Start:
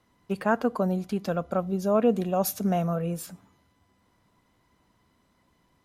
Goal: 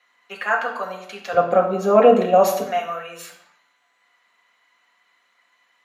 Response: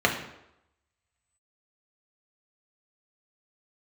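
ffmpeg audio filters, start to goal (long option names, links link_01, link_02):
-filter_complex "[0:a]asetnsamples=nb_out_samples=441:pad=0,asendcmd='1.33 highpass f 410;2.62 highpass f 1400',highpass=1300[link_01];[1:a]atrim=start_sample=2205,afade=type=out:start_time=0.37:duration=0.01,atrim=end_sample=16758[link_02];[link_01][link_02]afir=irnorm=-1:irlink=0,volume=-3dB"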